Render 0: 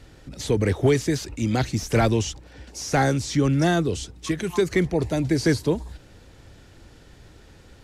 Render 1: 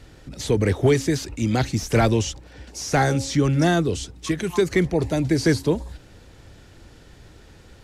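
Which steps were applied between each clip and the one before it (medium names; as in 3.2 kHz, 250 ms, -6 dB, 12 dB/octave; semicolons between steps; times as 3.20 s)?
de-hum 271.9 Hz, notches 3; trim +1.5 dB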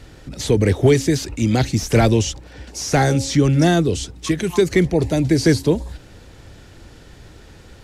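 dynamic bell 1.2 kHz, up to -5 dB, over -36 dBFS, Q 1.1; trim +4.5 dB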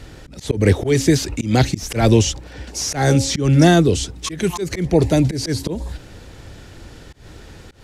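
slow attack 167 ms; trim +3.5 dB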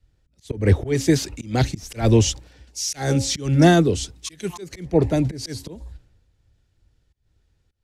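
three bands expanded up and down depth 100%; trim -6 dB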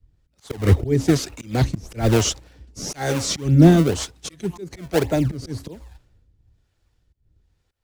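in parallel at -6.5 dB: decimation with a swept rate 30×, swing 160% 1.9 Hz; on the sum: harmonic tremolo 1.1 Hz, depth 70%, crossover 450 Hz; trim +1 dB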